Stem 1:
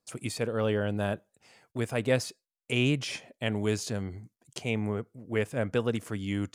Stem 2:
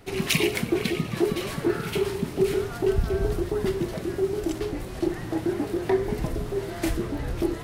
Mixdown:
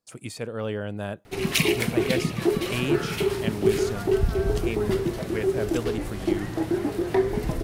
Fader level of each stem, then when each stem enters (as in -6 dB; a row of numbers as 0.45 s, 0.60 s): -2.0 dB, +1.0 dB; 0.00 s, 1.25 s